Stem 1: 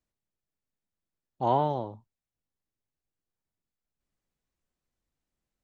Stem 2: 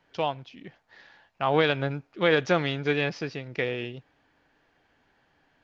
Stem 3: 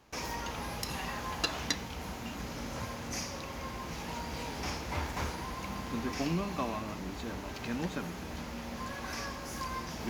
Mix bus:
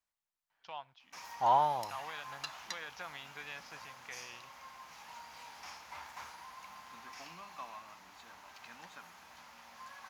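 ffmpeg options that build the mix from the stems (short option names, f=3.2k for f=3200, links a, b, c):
-filter_complex "[0:a]volume=-1dB[a];[1:a]alimiter=limit=-18dB:level=0:latency=1:release=151,adelay=500,volume=-13dB[b];[2:a]highpass=f=160:p=1,adelay=1000,volume=-10.5dB[c];[a][b][c]amix=inputs=3:normalize=0,lowshelf=f=600:t=q:w=1.5:g=-13.5"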